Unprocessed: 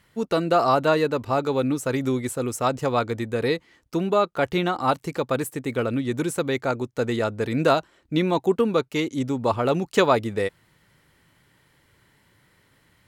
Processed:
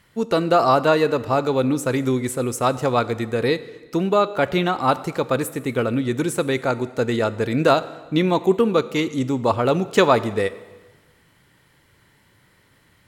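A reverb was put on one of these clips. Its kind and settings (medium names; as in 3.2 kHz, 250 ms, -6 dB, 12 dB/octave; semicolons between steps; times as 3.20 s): plate-style reverb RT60 1.3 s, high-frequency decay 0.9×, DRR 14.5 dB; trim +3 dB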